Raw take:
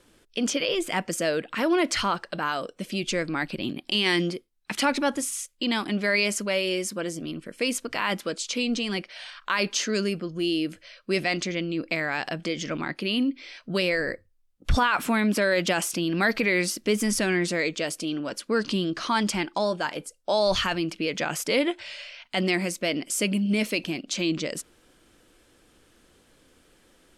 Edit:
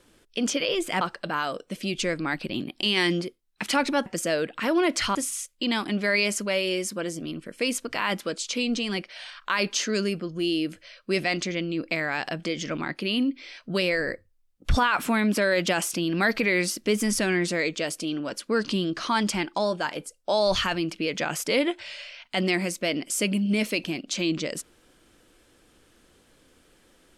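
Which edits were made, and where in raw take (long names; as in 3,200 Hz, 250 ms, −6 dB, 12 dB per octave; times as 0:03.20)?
0:01.01–0:02.10: move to 0:05.15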